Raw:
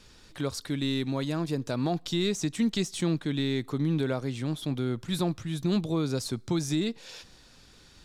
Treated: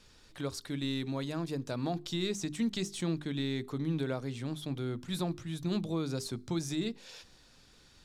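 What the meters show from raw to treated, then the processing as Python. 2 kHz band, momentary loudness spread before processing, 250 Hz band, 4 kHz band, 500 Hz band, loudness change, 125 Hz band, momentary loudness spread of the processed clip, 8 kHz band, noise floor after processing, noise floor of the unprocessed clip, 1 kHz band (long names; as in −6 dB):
−5.0 dB, 6 LU, −5.5 dB, −5.0 dB, −5.5 dB, −5.5 dB, −5.5 dB, 5 LU, −5.0 dB, −61 dBFS, −55 dBFS, −5.0 dB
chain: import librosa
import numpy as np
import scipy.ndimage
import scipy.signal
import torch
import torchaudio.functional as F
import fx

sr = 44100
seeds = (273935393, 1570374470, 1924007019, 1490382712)

y = fx.hum_notches(x, sr, base_hz=50, count=8)
y = y * librosa.db_to_amplitude(-5.0)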